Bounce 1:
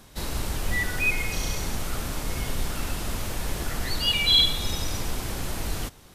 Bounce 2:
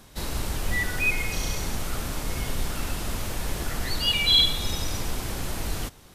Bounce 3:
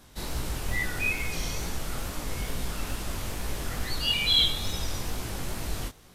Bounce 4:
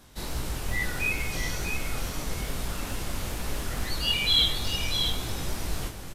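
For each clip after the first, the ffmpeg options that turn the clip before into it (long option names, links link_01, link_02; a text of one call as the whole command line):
ffmpeg -i in.wav -af anull out.wav
ffmpeg -i in.wav -af "flanger=delay=16:depth=7.4:speed=2.3" out.wav
ffmpeg -i in.wav -af "aecho=1:1:643:0.473" out.wav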